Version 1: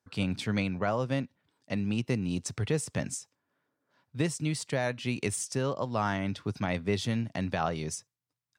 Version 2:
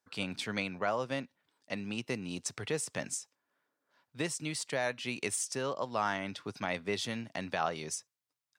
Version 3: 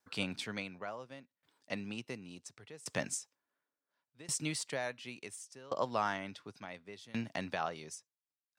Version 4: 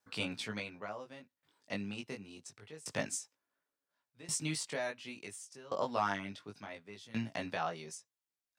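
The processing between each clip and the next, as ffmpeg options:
ffmpeg -i in.wav -af "highpass=frequency=530:poles=1" out.wav
ffmpeg -i in.wav -af "aeval=exprs='val(0)*pow(10,-23*if(lt(mod(0.7*n/s,1),2*abs(0.7)/1000),1-mod(0.7*n/s,1)/(2*abs(0.7)/1000),(mod(0.7*n/s,1)-2*abs(0.7)/1000)/(1-2*abs(0.7)/1000))/20)':channel_layout=same,volume=3.5dB" out.wav
ffmpeg -i in.wav -af "flanger=delay=18:depth=2.3:speed=0.26,volume=3dB" out.wav

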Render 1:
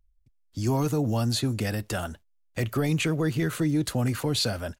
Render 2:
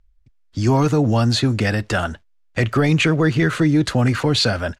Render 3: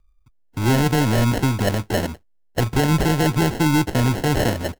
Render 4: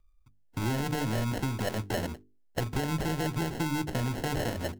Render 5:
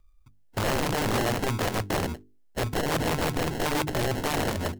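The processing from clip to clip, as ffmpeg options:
ffmpeg -i in.wav -af "lowpass=5900,equalizer=frequency=1600:width_type=o:width=1.2:gain=4.5,volume=8.5dB" out.wav
ffmpeg -i in.wav -af "acrusher=samples=37:mix=1:aa=0.000001,aeval=exprs='0.473*(cos(1*acos(clip(val(0)/0.473,-1,1)))-cos(1*PI/2))+0.0237*(cos(6*acos(clip(val(0)/0.473,-1,1)))-cos(6*PI/2))':channel_layout=same,volume=-1.5dB" out.wav
ffmpeg -i in.wav -af "bandreject=frequency=50:width_type=h:width=6,bandreject=frequency=100:width_type=h:width=6,bandreject=frequency=150:width_type=h:width=6,bandreject=frequency=200:width_type=h:width=6,bandreject=frequency=250:width_type=h:width=6,bandreject=frequency=300:width_type=h:width=6,bandreject=frequency=350:width_type=h:width=6,bandreject=frequency=400:width_type=h:width=6,bandreject=frequency=450:width_type=h:width=6,acompressor=threshold=-24dB:ratio=4,volume=-4dB" out.wav
ffmpeg -i in.wav -af "aeval=exprs='(mod(18.8*val(0)+1,2)-1)/18.8':channel_layout=same,volume=5dB" out.wav

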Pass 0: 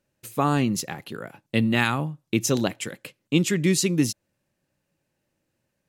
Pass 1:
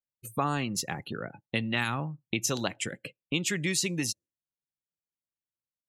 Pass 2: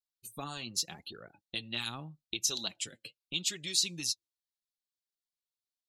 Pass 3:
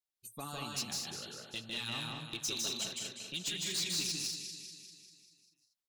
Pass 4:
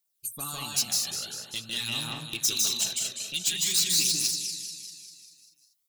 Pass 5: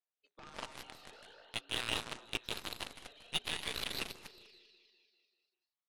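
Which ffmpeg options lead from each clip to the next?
ffmpeg -i in.wav -filter_complex "[0:a]afftdn=noise_reduction=34:noise_floor=-43,lowshelf=frequency=170:gain=6.5,acrossover=split=670|7200[link_01][link_02][link_03];[link_01]acompressor=threshold=-33dB:ratio=4[link_04];[link_02]acompressor=threshold=-27dB:ratio=4[link_05];[link_03]acompressor=threshold=-36dB:ratio=4[link_06];[link_04][link_05][link_06]amix=inputs=3:normalize=0" out.wav
ffmpeg -i in.wav -af "equalizer=frequency=125:width_type=o:width=1:gain=-11,equalizer=frequency=250:width_type=o:width=1:gain=-6,equalizer=frequency=500:width_type=o:width=1:gain=-8,equalizer=frequency=1000:width_type=o:width=1:gain=-6,equalizer=frequency=2000:width_type=o:width=1:gain=-12,equalizer=frequency=4000:width_type=o:width=1:gain=11,flanger=delay=1.5:depth=7.9:regen=30:speed=0.82:shape=triangular" out.wav
ffmpeg -i in.wav -filter_complex "[0:a]asplit=2[link_01][link_02];[link_02]aecho=0:1:197|394|591|788|985|1182|1379:0.299|0.173|0.1|0.0582|0.0338|0.0196|0.0114[link_03];[link_01][link_03]amix=inputs=2:normalize=0,asoftclip=type=tanh:threshold=-28dB,asplit=2[link_04][link_05];[link_05]aecho=0:1:154.5|192.4|233.2:0.794|0.447|0.447[link_06];[link_04][link_06]amix=inputs=2:normalize=0,volume=-2.5dB" out.wav
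ffmpeg -i in.wav -af "crystalizer=i=3:c=0,aphaser=in_gain=1:out_gain=1:delay=1.7:decay=0.36:speed=0.47:type=triangular,volume=1.5dB" out.wav
ffmpeg -i in.wav -af "highpass=frequency=340:width_type=q:width=0.5412,highpass=frequency=340:width_type=q:width=1.307,lowpass=frequency=3600:width_type=q:width=0.5176,lowpass=frequency=3600:width_type=q:width=0.7071,lowpass=frequency=3600:width_type=q:width=1.932,afreqshift=56,aeval=exprs='0.106*(cos(1*acos(clip(val(0)/0.106,-1,1)))-cos(1*PI/2))+0.0237*(cos(2*acos(clip(val(0)/0.106,-1,1)))-cos(2*PI/2))+0.00531*(cos(3*acos(clip(val(0)/0.106,-1,1)))-cos(3*PI/2))+0.0168*(cos(7*acos(clip(val(0)/0.106,-1,1)))-cos(7*PI/2))':channel_layout=same,highshelf=frequency=2600:gain=-11.5,volume=7dB" out.wav

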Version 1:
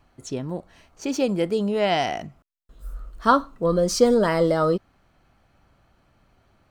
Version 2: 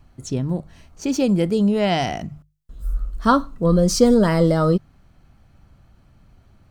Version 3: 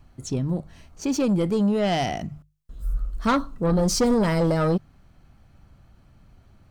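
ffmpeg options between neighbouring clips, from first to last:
ffmpeg -i in.wav -af "bass=frequency=250:gain=12,treble=frequency=4000:gain=4,bandreject=frequency=50:width_type=h:width=6,bandreject=frequency=100:width_type=h:width=6,bandreject=frequency=150:width_type=h:width=6" out.wav
ffmpeg -i in.wav -af "asoftclip=type=tanh:threshold=-14.5dB,volume=-1dB" out.wav

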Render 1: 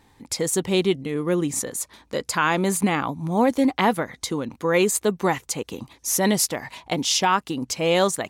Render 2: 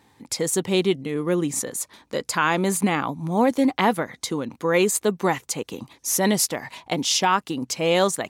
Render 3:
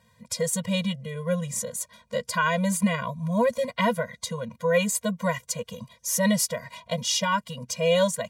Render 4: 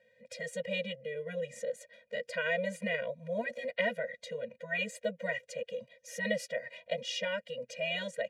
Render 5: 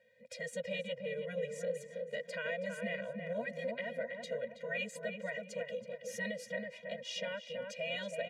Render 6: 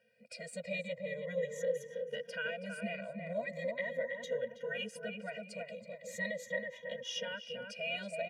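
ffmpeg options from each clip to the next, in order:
ffmpeg -i in.wav -af "highpass=100" out.wav
ffmpeg -i in.wav -af "afftfilt=real='re*eq(mod(floor(b*sr/1024/230),2),0)':imag='im*eq(mod(floor(b*sr/1024/230),2),0)':win_size=1024:overlap=0.75" out.wav
ffmpeg -i in.wav -filter_complex "[0:a]asplit=3[link_01][link_02][link_03];[link_01]bandpass=frequency=530:width_type=q:width=8,volume=0dB[link_04];[link_02]bandpass=frequency=1840:width_type=q:width=8,volume=-6dB[link_05];[link_03]bandpass=frequency=2480:width_type=q:width=8,volume=-9dB[link_06];[link_04][link_05][link_06]amix=inputs=3:normalize=0,afftfilt=real='re*lt(hypot(re,im),0.178)':imag='im*lt(hypot(re,im),0.178)':win_size=1024:overlap=0.75,volume=7.5dB" out.wav
ffmpeg -i in.wav -filter_complex "[0:a]alimiter=level_in=3dB:limit=-24dB:level=0:latency=1:release=384,volume=-3dB,asplit=2[link_01][link_02];[link_02]adelay=325,lowpass=frequency=1500:poles=1,volume=-3.5dB,asplit=2[link_03][link_04];[link_04]adelay=325,lowpass=frequency=1500:poles=1,volume=0.44,asplit=2[link_05][link_06];[link_06]adelay=325,lowpass=frequency=1500:poles=1,volume=0.44,asplit=2[link_07][link_08];[link_08]adelay=325,lowpass=frequency=1500:poles=1,volume=0.44,asplit=2[link_09][link_10];[link_10]adelay=325,lowpass=frequency=1500:poles=1,volume=0.44,asplit=2[link_11][link_12];[link_12]adelay=325,lowpass=frequency=1500:poles=1,volume=0.44[link_13];[link_03][link_05][link_07][link_09][link_11][link_13]amix=inputs=6:normalize=0[link_14];[link_01][link_14]amix=inputs=2:normalize=0,volume=-2dB" out.wav
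ffmpeg -i in.wav -af "afftfilt=real='re*pow(10,13/40*sin(2*PI*(1.1*log(max(b,1)*sr/1024/100)/log(2)-(-0.39)*(pts-256)/sr)))':imag='im*pow(10,13/40*sin(2*PI*(1.1*log(max(b,1)*sr/1024/100)/log(2)-(-0.39)*(pts-256)/sr)))':win_size=1024:overlap=0.75,volume=-2dB" out.wav

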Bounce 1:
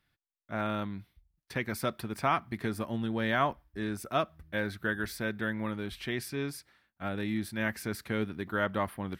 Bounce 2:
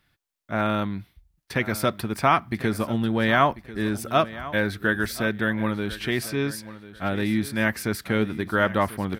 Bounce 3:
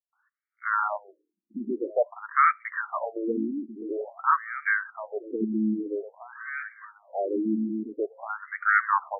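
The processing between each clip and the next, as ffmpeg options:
ffmpeg -i in.wav -af "aecho=1:1:1042|2084:0.158|0.0396,volume=8.5dB" out.wav
ffmpeg -i in.wav -filter_complex "[0:a]acrossover=split=250|4000[link_01][link_02][link_03];[link_03]adelay=80[link_04];[link_02]adelay=130[link_05];[link_01][link_05][link_04]amix=inputs=3:normalize=0,afftfilt=real='re*between(b*sr/1024,260*pow(1700/260,0.5+0.5*sin(2*PI*0.49*pts/sr))/1.41,260*pow(1700/260,0.5+0.5*sin(2*PI*0.49*pts/sr))*1.41)':imag='im*between(b*sr/1024,260*pow(1700/260,0.5+0.5*sin(2*PI*0.49*pts/sr))/1.41,260*pow(1700/260,0.5+0.5*sin(2*PI*0.49*pts/sr))*1.41)':win_size=1024:overlap=0.75,volume=4dB" out.wav

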